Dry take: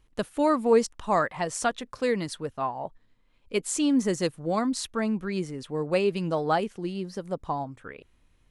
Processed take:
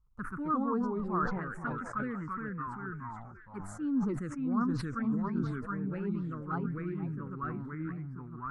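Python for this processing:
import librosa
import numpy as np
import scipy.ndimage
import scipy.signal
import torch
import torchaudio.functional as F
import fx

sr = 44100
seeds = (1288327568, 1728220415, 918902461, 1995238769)

y = fx.echo_pitch(x, sr, ms=109, semitones=-2, count=2, db_per_echo=-3.0)
y = fx.curve_eq(y, sr, hz=(250.0, 660.0, 1300.0, 3100.0), db=(0, -19, 4, -28))
y = fx.env_phaser(y, sr, low_hz=290.0, high_hz=2100.0, full_db=-22.0)
y = fx.echo_stepped(y, sr, ms=477, hz=680.0, octaves=1.4, feedback_pct=70, wet_db=-10.0)
y = fx.dynamic_eq(y, sr, hz=1300.0, q=0.95, threshold_db=-47.0, ratio=4.0, max_db=6)
y = fx.sustainer(y, sr, db_per_s=39.0)
y = F.gain(torch.from_numpy(y), -6.5).numpy()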